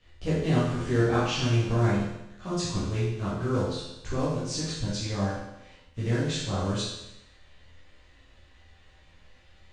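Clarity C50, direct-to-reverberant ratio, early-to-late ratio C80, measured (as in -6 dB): -0.5 dB, -10.0 dB, 3.5 dB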